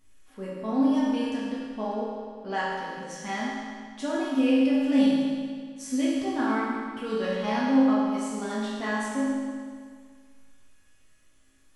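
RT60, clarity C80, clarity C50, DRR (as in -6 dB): 1.9 s, 0.5 dB, -1.5 dB, -8.5 dB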